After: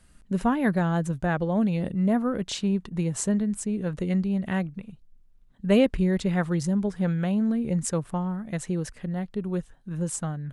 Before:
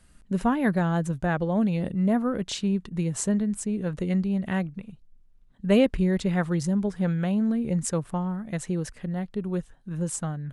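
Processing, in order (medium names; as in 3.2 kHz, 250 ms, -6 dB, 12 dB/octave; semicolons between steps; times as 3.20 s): 2.54–3.13 s: peaking EQ 810 Hz +4.5 dB 1.2 oct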